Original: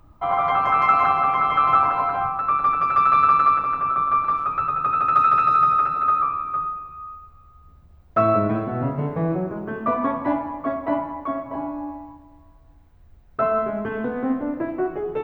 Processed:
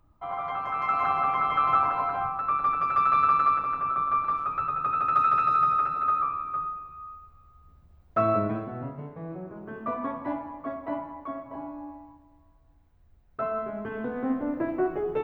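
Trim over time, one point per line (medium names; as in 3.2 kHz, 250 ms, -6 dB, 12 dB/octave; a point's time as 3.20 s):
0.74 s -11.5 dB
1.18 s -5.5 dB
8.40 s -5.5 dB
9.18 s -16 dB
9.77 s -9 dB
13.62 s -9 dB
14.70 s -2 dB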